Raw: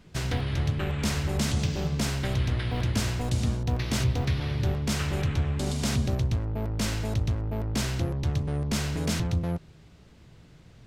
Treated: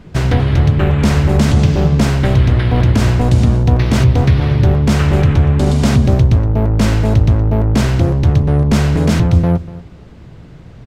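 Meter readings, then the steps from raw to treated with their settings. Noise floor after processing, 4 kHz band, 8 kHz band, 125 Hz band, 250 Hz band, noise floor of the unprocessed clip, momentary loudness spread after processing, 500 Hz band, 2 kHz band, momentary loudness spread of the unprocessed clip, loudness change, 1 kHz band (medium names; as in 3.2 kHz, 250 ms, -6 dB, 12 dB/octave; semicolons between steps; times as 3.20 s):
-37 dBFS, +7.5 dB, +5.0 dB, +16.0 dB, +16.0 dB, -53 dBFS, 2 LU, +15.5 dB, +11.5 dB, 3 LU, +15.5 dB, +14.5 dB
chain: treble shelf 2.4 kHz -12 dB; on a send: feedback delay 240 ms, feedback 18%, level -18.5 dB; on the sum: loudness maximiser +17 dB; trim -1 dB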